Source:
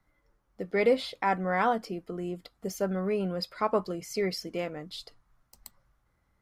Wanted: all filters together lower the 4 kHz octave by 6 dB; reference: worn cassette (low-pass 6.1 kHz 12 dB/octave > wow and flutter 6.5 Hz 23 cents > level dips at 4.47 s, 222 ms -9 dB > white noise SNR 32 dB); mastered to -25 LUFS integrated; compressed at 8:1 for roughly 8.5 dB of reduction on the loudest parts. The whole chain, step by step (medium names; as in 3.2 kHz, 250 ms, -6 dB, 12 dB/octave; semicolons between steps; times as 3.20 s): peaking EQ 4 kHz -6.5 dB; compression 8:1, threshold -27 dBFS; low-pass 6.1 kHz 12 dB/octave; wow and flutter 6.5 Hz 23 cents; level dips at 4.47 s, 222 ms -9 dB; white noise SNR 32 dB; trim +9.5 dB